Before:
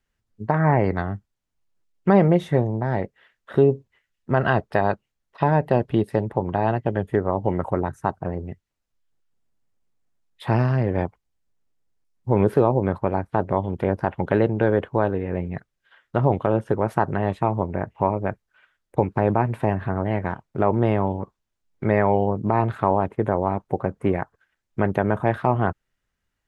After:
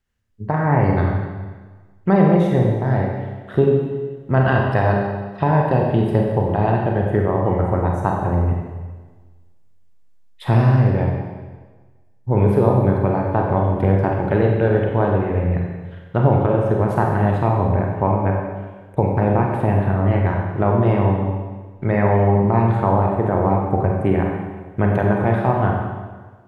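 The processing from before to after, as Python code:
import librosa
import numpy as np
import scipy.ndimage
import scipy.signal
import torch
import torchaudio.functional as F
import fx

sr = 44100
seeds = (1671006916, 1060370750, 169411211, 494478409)

p1 = fx.peak_eq(x, sr, hz=82.0, db=8.0, octaves=1.4)
p2 = fx.rider(p1, sr, range_db=10, speed_s=0.5)
p3 = p1 + F.gain(torch.from_numpy(p2), 0.0).numpy()
p4 = fx.rev_schroeder(p3, sr, rt60_s=1.4, comb_ms=31, drr_db=-0.5)
y = F.gain(torch.from_numpy(p4), -6.5).numpy()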